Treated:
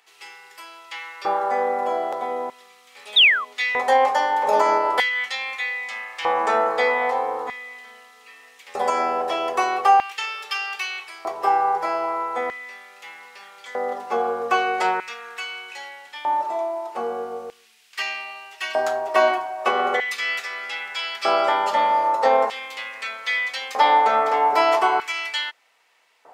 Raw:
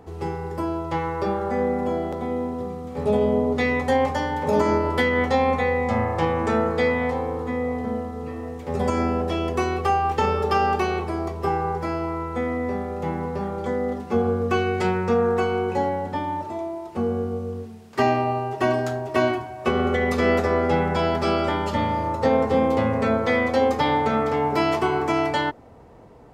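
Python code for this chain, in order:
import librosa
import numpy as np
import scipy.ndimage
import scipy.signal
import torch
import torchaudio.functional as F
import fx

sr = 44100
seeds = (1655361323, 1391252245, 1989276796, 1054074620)

y = fx.spec_paint(x, sr, seeds[0], shape='fall', start_s=3.16, length_s=0.29, low_hz=1000.0, high_hz=3900.0, level_db=-19.0)
y = fx.filter_lfo_highpass(y, sr, shape='square', hz=0.4, low_hz=740.0, high_hz=2500.0, q=1.5)
y = y * librosa.db_to_amplitude(3.5)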